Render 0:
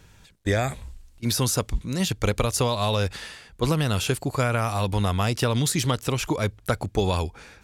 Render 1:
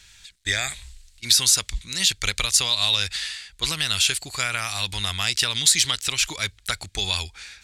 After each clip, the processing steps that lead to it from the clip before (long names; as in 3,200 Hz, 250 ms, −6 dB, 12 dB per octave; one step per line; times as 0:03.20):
octave-band graphic EQ 125/250/500/1,000/2,000/4,000/8,000 Hz −10/−10/−11/−5/+7/+11/+10 dB
level −1.5 dB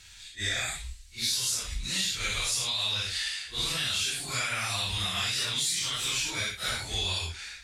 random phases in long frames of 200 ms
downward compressor 6 to 1, threshold −27 dBFS, peak gain reduction 12 dB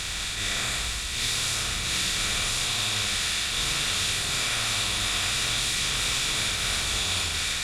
compressor on every frequency bin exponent 0.2
echo with a time of its own for lows and highs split 2,000 Hz, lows 87 ms, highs 724 ms, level −5.5 dB
level −7 dB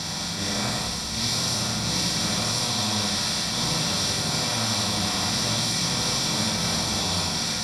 convolution reverb RT60 0.35 s, pre-delay 3 ms, DRR 2 dB
level −6 dB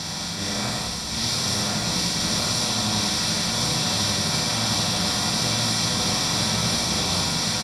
single-tap delay 1,071 ms −3 dB